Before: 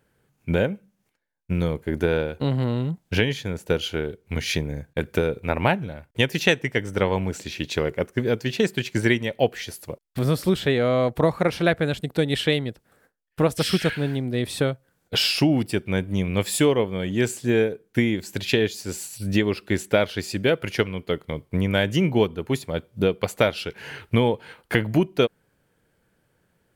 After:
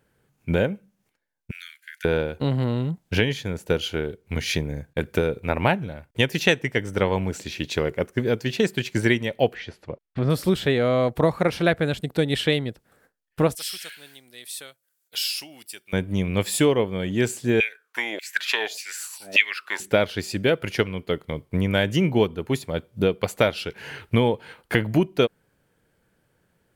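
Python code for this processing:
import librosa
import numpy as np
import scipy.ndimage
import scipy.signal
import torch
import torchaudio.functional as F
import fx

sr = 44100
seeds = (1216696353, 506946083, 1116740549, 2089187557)

y = fx.steep_highpass(x, sr, hz=1500.0, slope=72, at=(1.51, 2.05))
y = fx.lowpass(y, sr, hz=2700.0, slope=12, at=(9.53, 10.29), fade=0.02)
y = fx.differentiator(y, sr, at=(13.55, 15.93))
y = fx.filter_lfo_highpass(y, sr, shape='saw_down', hz=1.7, low_hz=570.0, high_hz=2600.0, q=7.0, at=(17.6, 19.8))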